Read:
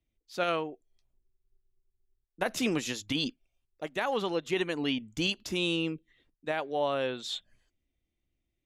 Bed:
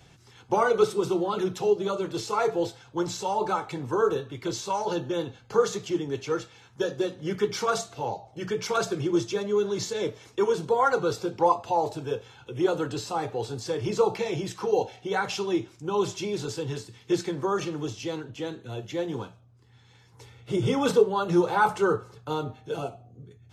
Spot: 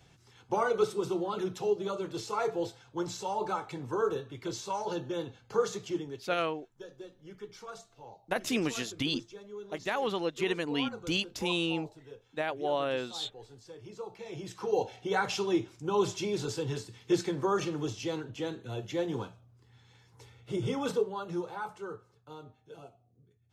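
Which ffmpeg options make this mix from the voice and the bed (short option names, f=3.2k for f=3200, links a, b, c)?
-filter_complex "[0:a]adelay=5900,volume=-1dB[a];[1:a]volume=11dB,afade=t=out:st=5.97:d=0.29:silence=0.223872,afade=t=in:st=14.15:d=0.88:silence=0.141254,afade=t=out:st=19.45:d=2.23:silence=0.16788[b];[a][b]amix=inputs=2:normalize=0"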